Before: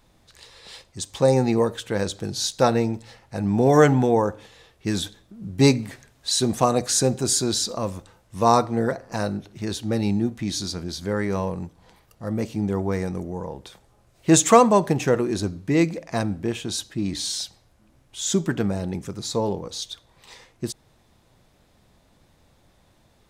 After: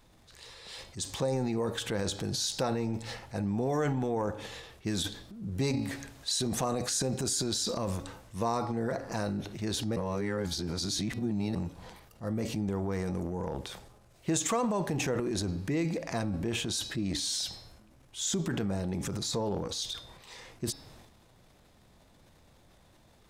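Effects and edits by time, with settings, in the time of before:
9.96–11.55 reverse
whole clip: de-hum 278.6 Hz, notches 20; transient shaper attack -3 dB, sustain +9 dB; compressor 4:1, threshold -27 dBFS; gain -2 dB

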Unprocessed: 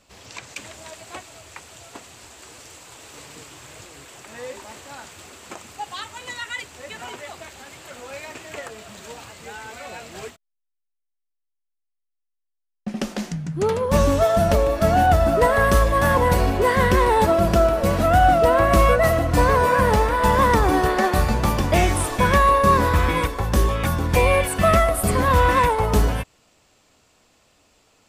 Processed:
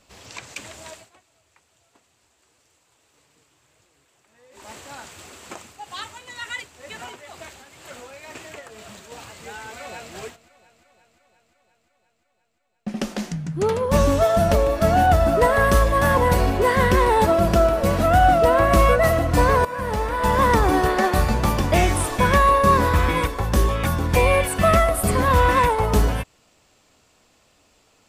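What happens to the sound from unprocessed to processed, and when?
0.91–4.7 dip -20 dB, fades 0.19 s
5.55–9.12 tremolo 2.1 Hz, depth 56%
9.73–10.13 echo throw 0.35 s, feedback 70%, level -17 dB
19.65–20.5 fade in, from -15 dB

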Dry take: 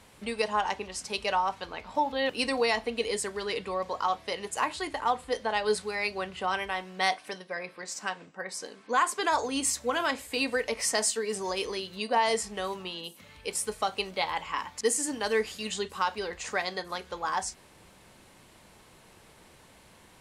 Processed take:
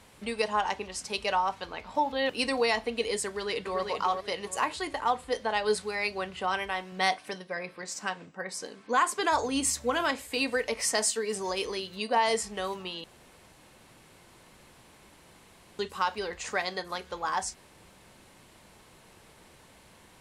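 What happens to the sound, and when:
3.26–3.81 echo throw 0.39 s, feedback 30%, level -5 dB
6.92–10.12 low shelf 180 Hz +7.5 dB
13.04–15.79 room tone

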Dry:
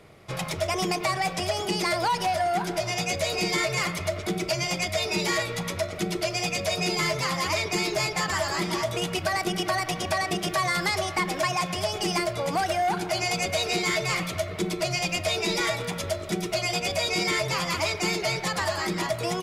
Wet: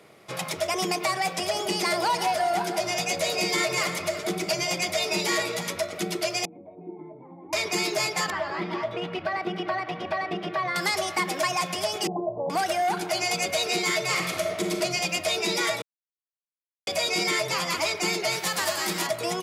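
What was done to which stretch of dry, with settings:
1.28–5.7 echo with dull and thin repeats by turns 0.167 s, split 1100 Hz, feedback 61%, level -8 dB
6.45–7.53 vocal tract filter u
8.3–10.76 air absorption 360 m
12.07–12.5 steep low-pass 960 Hz 72 dB/oct
14.01–14.76 reverb throw, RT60 1.5 s, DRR 3.5 dB
15.82–16.87 mute
18.31–19.06 spectral whitening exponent 0.6
whole clip: HPF 200 Hz 12 dB/oct; high shelf 7100 Hz +4 dB

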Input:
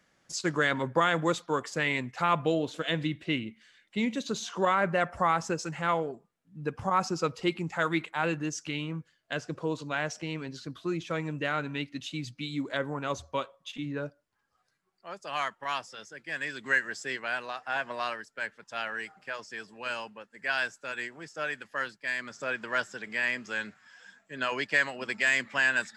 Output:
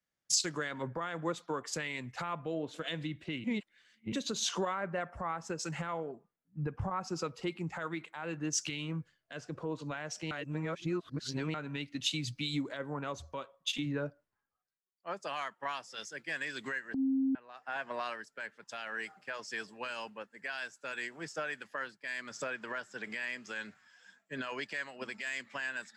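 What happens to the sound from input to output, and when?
3.44–4.12 reverse
10.31–11.54 reverse
16.94–17.35 bleep 267 Hz -8.5 dBFS
whole clip: compressor 12:1, threshold -37 dBFS; limiter -31 dBFS; three-band expander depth 100%; gain +5 dB

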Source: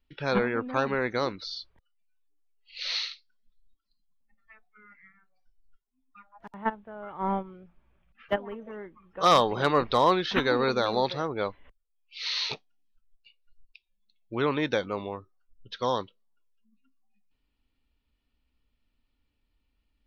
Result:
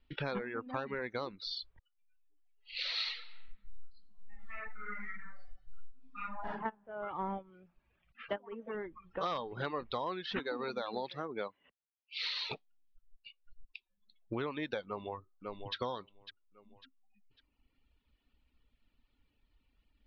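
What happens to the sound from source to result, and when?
2.94–6.48 reverb throw, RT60 0.85 s, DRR -11 dB
7.5–8.75 low shelf 81 Hz -11 dB
10.39–12.24 Chebyshev high-pass 190 Hz
14.86–15.75 echo throw 0.55 s, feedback 35%, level -13.5 dB
whole clip: reverb removal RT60 0.96 s; LPF 4500 Hz 24 dB/oct; compressor 6:1, threshold -40 dBFS; gain +4.5 dB

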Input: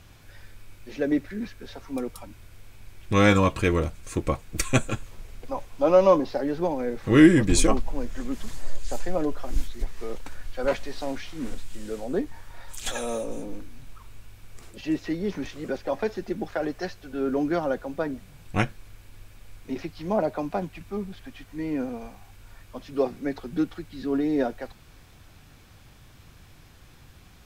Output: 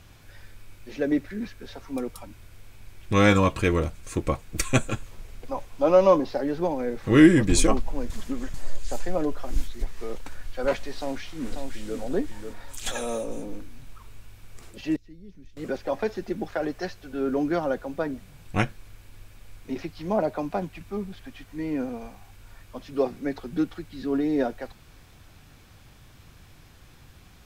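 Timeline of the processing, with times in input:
8.1–8.54 reverse
10.98–11.99 echo throw 0.54 s, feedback 30%, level -6 dB
14.96–15.57 passive tone stack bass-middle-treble 10-0-1

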